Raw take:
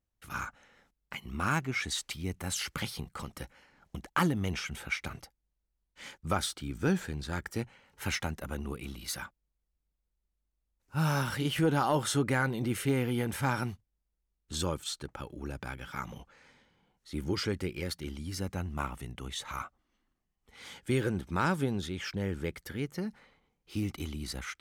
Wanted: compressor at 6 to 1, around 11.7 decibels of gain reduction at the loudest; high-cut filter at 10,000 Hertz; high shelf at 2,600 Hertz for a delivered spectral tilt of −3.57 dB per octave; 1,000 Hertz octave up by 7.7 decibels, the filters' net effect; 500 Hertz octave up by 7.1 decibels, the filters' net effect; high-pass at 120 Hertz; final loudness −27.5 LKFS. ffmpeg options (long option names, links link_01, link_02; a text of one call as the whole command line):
ffmpeg -i in.wav -af "highpass=120,lowpass=10000,equalizer=frequency=500:width_type=o:gain=7,equalizer=frequency=1000:width_type=o:gain=7,highshelf=frequency=2600:gain=6,acompressor=threshold=-29dB:ratio=6,volume=8dB" out.wav